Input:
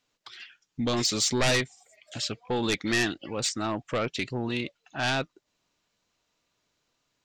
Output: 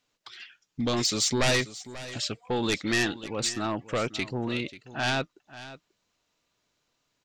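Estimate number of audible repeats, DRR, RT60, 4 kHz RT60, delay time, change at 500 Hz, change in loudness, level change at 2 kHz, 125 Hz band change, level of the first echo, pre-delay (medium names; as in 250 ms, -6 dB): 1, no reverb, no reverb, no reverb, 538 ms, 0.0 dB, 0.0 dB, 0.0 dB, 0.0 dB, -16.0 dB, no reverb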